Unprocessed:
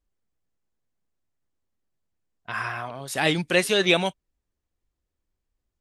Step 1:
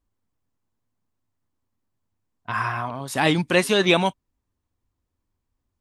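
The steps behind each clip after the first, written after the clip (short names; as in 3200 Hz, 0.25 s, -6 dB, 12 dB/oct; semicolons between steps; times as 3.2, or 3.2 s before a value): fifteen-band EQ 100 Hz +11 dB, 250 Hz +8 dB, 1000 Hz +8 dB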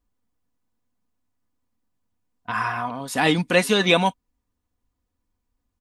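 comb 4.1 ms, depth 45%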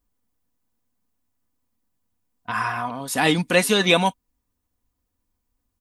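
high shelf 8500 Hz +9.5 dB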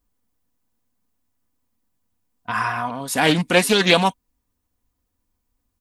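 Doppler distortion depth 0.21 ms; gain +2 dB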